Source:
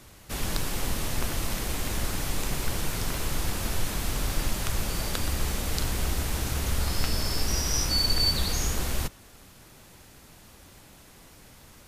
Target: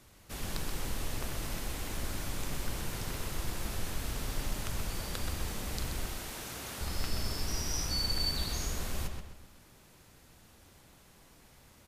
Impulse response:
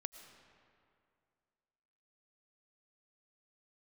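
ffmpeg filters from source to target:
-filter_complex "[0:a]asettb=1/sr,asplit=3[a][b][c];[a]atrim=end=6.054[d];[b]atrim=start=6.05:end=6.81,asetpts=PTS-STARTPTS,afade=t=in:d=0.004:c=qsin,afade=t=out:st=0.756:d=0.004:c=qsin,highpass=f=350:p=1[e];[c]atrim=start=6.806[f];[d][e]acrossfade=d=0.004:c1=hsin:c2=qsin[g];[g][f]acrossfade=d=0.004:c1=qsin:c2=hsin,asplit=2[h][i];[i]adelay=129,lowpass=f=4.3k:p=1,volume=-5dB,asplit=2[j][k];[k]adelay=129,lowpass=f=4.3k:p=1,volume=0.44,asplit=2[l][m];[m]adelay=129,lowpass=f=4.3k:p=1,volume=0.44,asplit=2[n][o];[o]adelay=129,lowpass=f=4.3k:p=1,volume=0.44,asplit=2[p][q];[q]adelay=129,lowpass=f=4.3k:p=1,volume=0.44[r];[h][j][l][n][p][r]amix=inputs=6:normalize=0,volume=-8.5dB"

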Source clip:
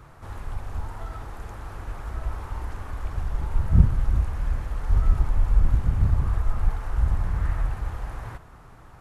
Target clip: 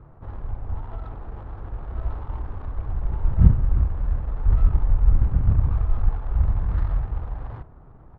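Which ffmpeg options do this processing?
-af "atempo=1.1,adynamicsmooth=sensitivity=2.5:basefreq=720,volume=2dB"

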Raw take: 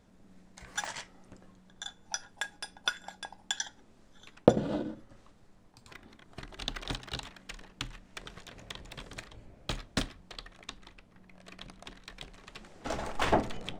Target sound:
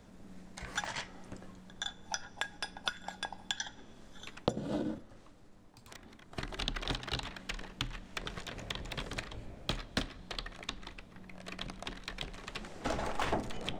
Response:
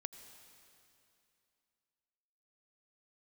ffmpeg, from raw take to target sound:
-filter_complex "[0:a]asettb=1/sr,asplit=3[a][b][c];[a]atrim=end=4.984[d];[b]atrim=start=4.98:end=6.33,asetpts=PTS-STARTPTS,afade=t=in:d=0.004:c=qsin,afade=t=out:st=1.346:d=0.004:c=qsin,aeval=exprs='0.0251*(cos(1*acos(clip(val(0)/0.0251,-1,1)))-cos(1*PI/2))+0.0112*(cos(3*acos(clip(val(0)/0.0251,-1,1)))-cos(3*PI/2))+0.000891*(cos(7*acos(clip(val(0)/0.0251,-1,1)))-cos(7*PI/2))':c=same[e];[c]atrim=start=6.326[f];[d][e]acrossfade=d=0.004:c1=hsin:c2=qsin[g];[g][f]acrossfade=d=0.004:c1=qsin:c2=hsin,acrossover=split=260|5500[h][i][j];[h]acompressor=threshold=-43dB:ratio=4[k];[i]acompressor=threshold=-40dB:ratio=4[l];[j]acompressor=threshold=-60dB:ratio=4[m];[k][l][m]amix=inputs=3:normalize=0,asplit=2[n][o];[1:a]atrim=start_sample=2205[p];[o][p]afir=irnorm=-1:irlink=0,volume=-10.5dB[q];[n][q]amix=inputs=2:normalize=0,volume=4.5dB"

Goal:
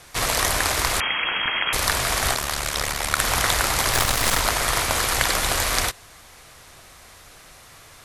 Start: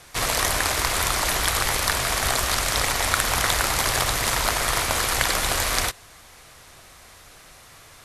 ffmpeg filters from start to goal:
-filter_complex "[0:a]asettb=1/sr,asplit=3[a][b][c];[a]atrim=end=1.004[d];[b]atrim=start=1:end=1.73,asetpts=PTS-STARTPTS,afade=t=in:d=0.004:c=qsin,afade=t=out:st=0.726:d=0.004:c=qsin,lowpass=f=2.8k:t=q:w=0.5098,lowpass=f=2.8k:t=q:w=0.6013,lowpass=f=2.8k:t=q:w=0.9,lowpass=f=2.8k:t=q:w=2.563,afreqshift=-3300[e];[c]atrim=start=1.726[f];[d][e]acrossfade=d=0.004:c1=hsin:c2=qsin[g];[g][f]acrossfade=d=0.004:c1=qsin:c2=hsin,asplit=3[h][i][j];[h]afade=t=out:st=2.33:d=0.02[k];[i]tremolo=f=73:d=0.824,afade=t=in:st=2.33:d=0.02,afade=t=out:st=3.18:d=0.02[l];[j]afade=t=in:st=3.18:d=0.02[m];[k][l][m]amix=inputs=3:normalize=0,asplit=3[n][o][p];[n]afade=t=out:st=3.92:d=0.02[q];[o]aeval=exprs='0.501*(cos(1*acos(clip(val(0)/0.501,-1,1)))-cos(1*PI/2))+0.0708*(cos(8*acos(clip(val(0)/0.501,-1,1)))-cos(8*PI/2))':c=same,afade=t=in:st=3.92:d=0.02,afade=t=out:st=4.39:d=0.02[r];[p]afade=t=in:st=4.39:d=0.02[s];[q][r][s]amix=inputs=3:normalize=0,volume=1dB"

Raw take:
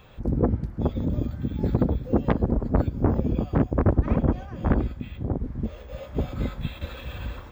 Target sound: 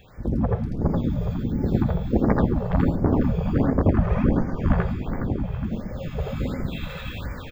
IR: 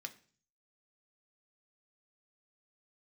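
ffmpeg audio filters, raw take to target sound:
-filter_complex "[0:a]asplit=7[a][b][c][d][e][f][g];[b]adelay=414,afreqshift=-64,volume=-7.5dB[h];[c]adelay=828,afreqshift=-128,volume=-13.5dB[i];[d]adelay=1242,afreqshift=-192,volume=-19.5dB[j];[e]adelay=1656,afreqshift=-256,volume=-25.6dB[k];[f]adelay=2070,afreqshift=-320,volume=-31.6dB[l];[g]adelay=2484,afreqshift=-384,volume=-37.6dB[m];[a][h][i][j][k][l][m]amix=inputs=7:normalize=0,asplit=2[n][o];[1:a]atrim=start_sample=2205,adelay=82[p];[o][p]afir=irnorm=-1:irlink=0,volume=5dB[q];[n][q]amix=inputs=2:normalize=0,afftfilt=real='re*(1-between(b*sr/1024,250*pow(3400/250,0.5+0.5*sin(2*PI*1.4*pts/sr))/1.41,250*pow(3400/250,0.5+0.5*sin(2*PI*1.4*pts/sr))*1.41))':imag='im*(1-between(b*sr/1024,250*pow(3400/250,0.5+0.5*sin(2*PI*1.4*pts/sr))/1.41,250*pow(3400/250,0.5+0.5*sin(2*PI*1.4*pts/sr))*1.41))':win_size=1024:overlap=0.75"

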